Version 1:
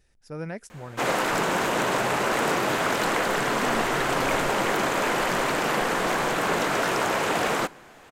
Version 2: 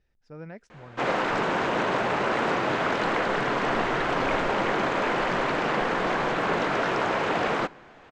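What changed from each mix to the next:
speech -6.5 dB; master: add distance through air 170 m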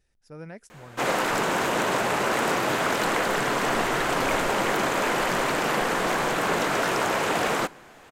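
master: remove distance through air 170 m

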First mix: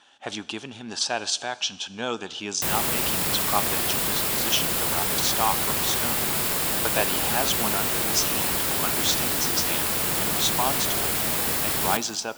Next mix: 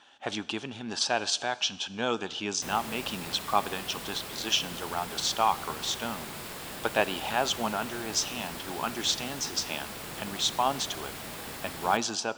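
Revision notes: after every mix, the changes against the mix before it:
background -11.5 dB; master: add treble shelf 7.8 kHz -10 dB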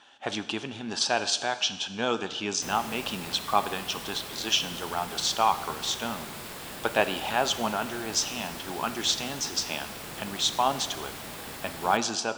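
speech: send +7.5 dB

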